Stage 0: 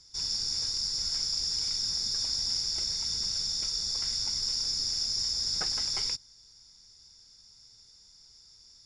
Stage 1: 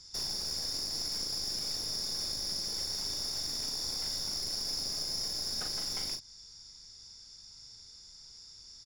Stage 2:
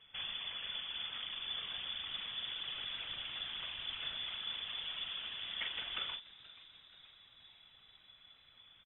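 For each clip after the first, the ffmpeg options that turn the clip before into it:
ffmpeg -i in.wav -filter_complex "[0:a]acompressor=threshold=-35dB:ratio=6,aeval=exprs='clip(val(0),-1,0.00944)':channel_layout=same,asplit=2[link_01][link_02];[link_02]adelay=39,volume=-6dB[link_03];[link_01][link_03]amix=inputs=2:normalize=0,volume=3dB" out.wav
ffmpeg -i in.wav -filter_complex "[0:a]afftfilt=real='hypot(re,im)*cos(2*PI*random(0))':imag='hypot(re,im)*sin(2*PI*random(1))':win_size=512:overlap=0.75,lowpass=frequency=3000:width_type=q:width=0.5098,lowpass=frequency=3000:width_type=q:width=0.6013,lowpass=frequency=3000:width_type=q:width=0.9,lowpass=frequency=3000:width_type=q:width=2.563,afreqshift=-3500,asplit=6[link_01][link_02][link_03][link_04][link_05][link_06];[link_02]adelay=479,afreqshift=100,volume=-19.5dB[link_07];[link_03]adelay=958,afreqshift=200,volume=-24.2dB[link_08];[link_04]adelay=1437,afreqshift=300,volume=-29dB[link_09];[link_05]adelay=1916,afreqshift=400,volume=-33.7dB[link_10];[link_06]adelay=2395,afreqshift=500,volume=-38.4dB[link_11];[link_01][link_07][link_08][link_09][link_10][link_11]amix=inputs=6:normalize=0,volume=10.5dB" out.wav

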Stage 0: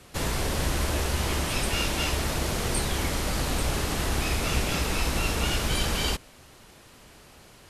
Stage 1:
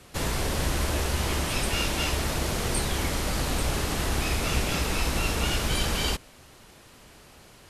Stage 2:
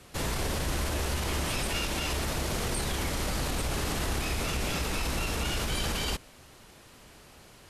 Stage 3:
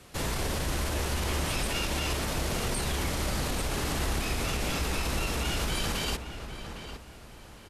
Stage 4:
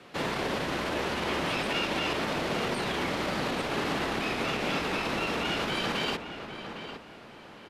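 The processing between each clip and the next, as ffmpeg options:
ffmpeg -i in.wav -af anull out.wav
ffmpeg -i in.wav -af "alimiter=limit=-20dB:level=0:latency=1:release=23,volume=-1.5dB" out.wav
ffmpeg -i in.wav -filter_complex "[0:a]asplit=2[link_01][link_02];[link_02]adelay=807,lowpass=frequency=2800:poles=1,volume=-9dB,asplit=2[link_03][link_04];[link_04]adelay=807,lowpass=frequency=2800:poles=1,volume=0.32,asplit=2[link_05][link_06];[link_06]adelay=807,lowpass=frequency=2800:poles=1,volume=0.32,asplit=2[link_07][link_08];[link_08]adelay=807,lowpass=frequency=2800:poles=1,volume=0.32[link_09];[link_01][link_03][link_05][link_07][link_09]amix=inputs=5:normalize=0" out.wav
ffmpeg -i in.wav -filter_complex "[0:a]acrossover=split=150 4200:gain=0.0708 1 0.126[link_01][link_02][link_03];[link_01][link_02][link_03]amix=inputs=3:normalize=0,volume=4dB" out.wav

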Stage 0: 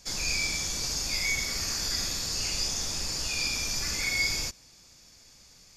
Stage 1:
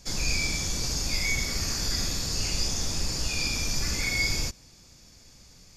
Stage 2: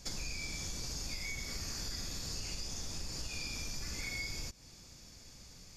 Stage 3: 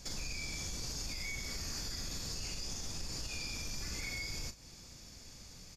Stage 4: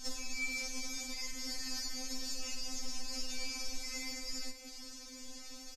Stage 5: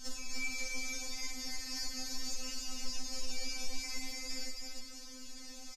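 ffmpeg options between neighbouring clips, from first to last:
ffmpeg -i in.wav -af "lowshelf=frequency=420:gain=8.5" out.wav
ffmpeg -i in.wav -af "acompressor=threshold=-36dB:ratio=6,volume=-1.5dB" out.wav
ffmpeg -i in.wav -filter_complex "[0:a]asplit=2[link_01][link_02];[link_02]adelay=39,volume=-12.5dB[link_03];[link_01][link_03]amix=inputs=2:normalize=0,asplit=2[link_04][link_05];[link_05]asoftclip=type=hard:threshold=-33dB,volume=-4.5dB[link_06];[link_04][link_06]amix=inputs=2:normalize=0,alimiter=level_in=5dB:limit=-24dB:level=0:latency=1,volume=-5dB,volume=-2.5dB" out.wav
ffmpeg -i in.wav -af "acompressor=threshold=-44dB:ratio=2,aecho=1:1:474:0.251,afftfilt=real='re*3.46*eq(mod(b,12),0)':imag='im*3.46*eq(mod(b,12),0)':win_size=2048:overlap=0.75,volume=6.5dB" out.wav
ffmpeg -i in.wav -af "flanger=delay=8.4:depth=2.2:regen=58:speed=0.39:shape=sinusoidal,aecho=1:1:291:0.708,volume=2.5dB" out.wav

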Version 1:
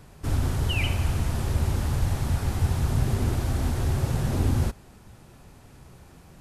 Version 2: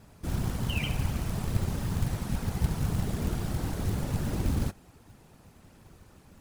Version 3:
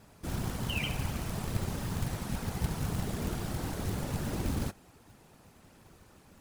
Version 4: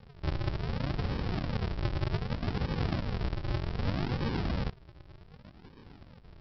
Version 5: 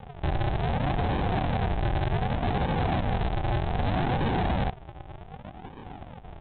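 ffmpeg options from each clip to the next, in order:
ffmpeg -i in.wav -af "afftfilt=real='hypot(re,im)*cos(2*PI*random(0))':imag='hypot(re,im)*sin(2*PI*random(1))':win_size=512:overlap=0.75,acrusher=bits=5:mode=log:mix=0:aa=0.000001,volume=1dB" out.wav
ffmpeg -i in.wav -af "lowshelf=frequency=190:gain=-6.5" out.wav
ffmpeg -i in.wav -af "alimiter=level_in=3.5dB:limit=-24dB:level=0:latency=1:release=116,volume=-3.5dB,aresample=11025,acrusher=samples=32:mix=1:aa=0.000001:lfo=1:lforange=32:lforate=0.65,aresample=44100,volume=6dB" out.wav
ffmpeg -i in.wav -af "equalizer=frequency=760:width_type=o:width=0.48:gain=13.5,aresample=8000,asoftclip=type=hard:threshold=-31.5dB,aresample=44100,volume=8.5dB" out.wav

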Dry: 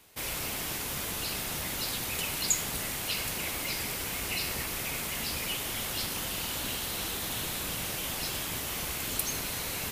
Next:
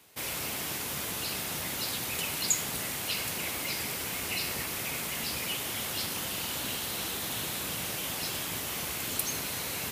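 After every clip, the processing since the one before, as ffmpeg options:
ffmpeg -i in.wav -af "highpass=87" out.wav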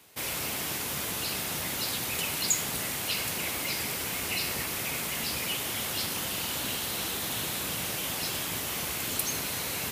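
ffmpeg -i in.wav -af "asoftclip=type=tanh:threshold=-16dB,volume=2dB" out.wav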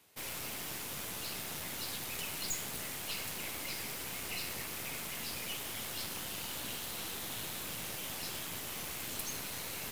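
ffmpeg -i in.wav -af "aeval=exprs='(tanh(22.4*val(0)+0.75)-tanh(0.75))/22.4':channel_layout=same,volume=-4.5dB" out.wav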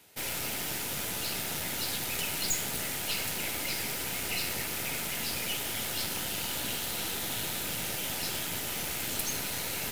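ffmpeg -i in.wav -af "asuperstop=centerf=1100:order=4:qfactor=7.9,volume=7dB" out.wav

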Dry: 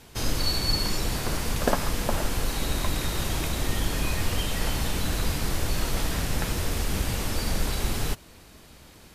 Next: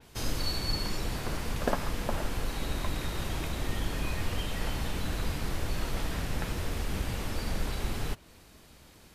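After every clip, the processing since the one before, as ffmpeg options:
ffmpeg -i in.wav -af "adynamicequalizer=threshold=0.00562:dfrequency=4100:dqfactor=0.7:tfrequency=4100:tqfactor=0.7:attack=5:release=100:ratio=0.375:range=3:mode=cutabove:tftype=highshelf,volume=-5dB" out.wav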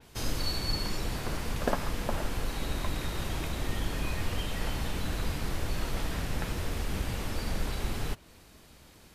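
ffmpeg -i in.wav -af anull out.wav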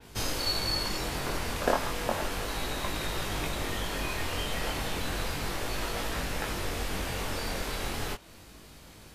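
ffmpeg -i in.wav -filter_complex "[0:a]acrossover=split=320|5200[link_01][link_02][link_03];[link_01]acompressor=threshold=-37dB:ratio=6[link_04];[link_04][link_02][link_03]amix=inputs=3:normalize=0,flanger=delay=19:depth=4.7:speed=0.33,volume=7.5dB" out.wav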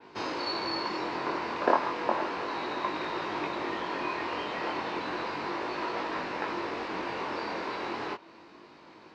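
ffmpeg -i in.wav -af "highpass=250,equalizer=frequency=340:width_type=q:width=4:gain=8,equalizer=frequency=990:width_type=q:width=4:gain=9,equalizer=frequency=3300:width_type=q:width=4:gain=-8,lowpass=frequency=4200:width=0.5412,lowpass=frequency=4200:width=1.3066" out.wav

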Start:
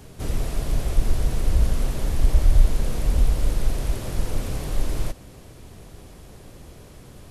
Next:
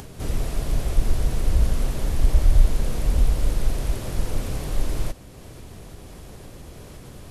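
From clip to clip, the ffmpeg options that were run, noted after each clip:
ffmpeg -i in.wav -af "acompressor=mode=upward:threshold=-34dB:ratio=2.5" out.wav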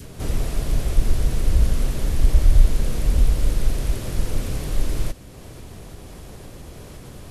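ffmpeg -i in.wav -af "adynamicequalizer=threshold=0.00398:dfrequency=820:dqfactor=1.2:tfrequency=820:tqfactor=1.2:attack=5:release=100:ratio=0.375:range=2:mode=cutabove:tftype=bell,volume=2dB" out.wav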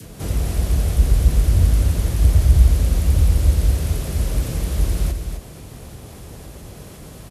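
ffmpeg -i in.wav -af "aecho=1:1:259:0.473,afreqshift=32,crystalizer=i=0.5:c=0" out.wav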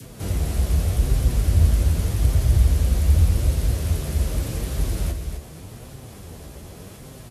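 ffmpeg -i in.wav -af "flanger=delay=7.5:depth=6.6:regen=44:speed=0.84:shape=sinusoidal,volume=2dB" out.wav

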